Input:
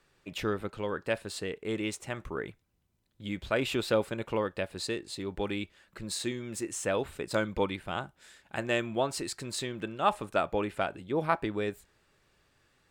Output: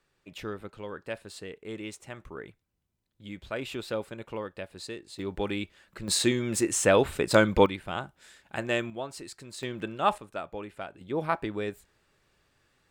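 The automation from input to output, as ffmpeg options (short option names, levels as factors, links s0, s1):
-af "asetnsamples=n=441:p=0,asendcmd='5.19 volume volume 2dB;6.08 volume volume 9dB;7.66 volume volume 1dB;8.9 volume volume -7dB;9.63 volume volume 1.5dB;10.18 volume volume -8dB;11.01 volume volume -0.5dB',volume=0.531"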